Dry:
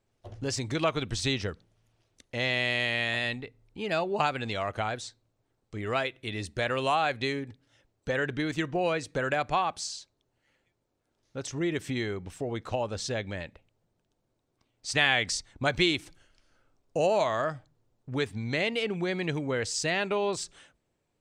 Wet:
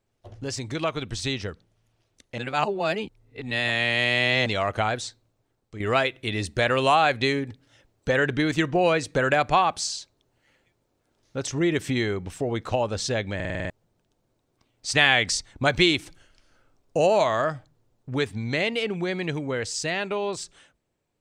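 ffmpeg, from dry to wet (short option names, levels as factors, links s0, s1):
-filter_complex "[0:a]asplit=11[s0][s1][s2][s3][s4][s5][s6][s7][s8][s9][s10];[s0]atrim=end=2.382[s11];[s1]atrim=start=2.378:end=4.462,asetpts=PTS-STARTPTS,areverse[s12];[s2]atrim=start=4.458:end=5.8,asetpts=PTS-STARTPTS,afade=t=out:st=0.582:d=0.76:silence=0.375837[s13];[s3]atrim=start=5.8:end=13.402,asetpts=PTS-STARTPTS,afade=t=in:d=0.004:c=hsin:silence=0.375837[s14];[s4]atrim=start=13.348:end=13.402[s15];[s5]atrim=start=13.348:end=13.402[s16];[s6]atrim=start=13.348:end=13.402[s17];[s7]atrim=start=13.348:end=13.402[s18];[s8]atrim=start=13.348:end=13.402[s19];[s9]atrim=start=13.348:end=13.402[s20];[s10]atrim=start=13.698[s21];[s11][s12]acrossfade=d=0.004:c1=hsin:c2=hsin[s22];[s13][s14]concat=n=2:v=0:a=1[s23];[s22][s23]acrossfade=d=0.004:c1=hsin:c2=hsin[s24];[s24][s15]acrossfade=d=0.004:c1=hsin:c2=hsin[s25];[s25][s16]acrossfade=d=0.004:c1=hsin:c2=hsin[s26];[s26][s17]acrossfade=d=0.004:c1=hsin:c2=hsin[s27];[s27][s18]acrossfade=d=0.004:c1=hsin:c2=hsin[s28];[s28][s19]acrossfade=d=0.004:c1=hsin:c2=hsin[s29];[s29][s20]acrossfade=d=0.004:c1=hsin:c2=hsin[s30];[s30][s21]acrossfade=d=0.004:c1=hsin:c2=hsin,dynaudnorm=f=740:g=9:m=2.24"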